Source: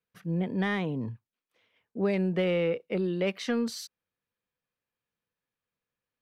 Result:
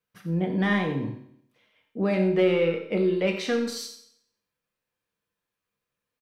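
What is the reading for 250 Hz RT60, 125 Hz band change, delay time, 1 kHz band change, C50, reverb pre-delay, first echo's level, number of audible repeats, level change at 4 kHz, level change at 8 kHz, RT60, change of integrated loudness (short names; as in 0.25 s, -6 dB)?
0.70 s, +3.0 dB, 89 ms, +5.0 dB, 6.5 dB, 7 ms, -11.5 dB, 1, +4.0 dB, +4.5 dB, 0.70 s, +4.5 dB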